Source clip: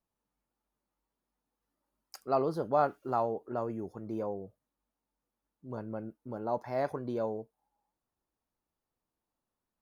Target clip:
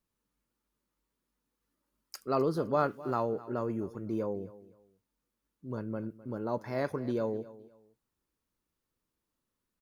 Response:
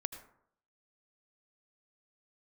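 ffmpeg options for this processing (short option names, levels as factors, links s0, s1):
-af "equalizer=f=750:w=2.3:g=-11,aecho=1:1:257|514:0.126|0.0327,volume=1.58"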